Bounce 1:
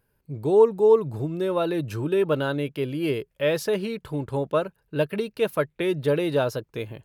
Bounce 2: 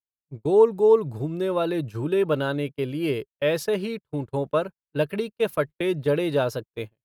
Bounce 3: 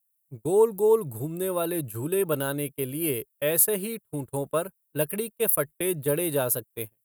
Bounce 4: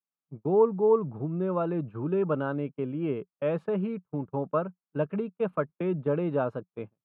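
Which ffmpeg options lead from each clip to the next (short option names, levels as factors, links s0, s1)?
-af "agate=range=0.00891:threshold=0.0282:ratio=16:detection=peak"
-af "aexciter=amount=14.9:drive=7:freq=8000,volume=0.668"
-af "highpass=100,equalizer=f=180:t=q:w=4:g=10,equalizer=f=250:t=q:w=4:g=5,equalizer=f=780:t=q:w=4:g=4,equalizer=f=1200:t=q:w=4:g=7,equalizer=f=1900:t=q:w=4:g=-10,lowpass=f=2200:w=0.5412,lowpass=f=2200:w=1.3066,volume=0.75"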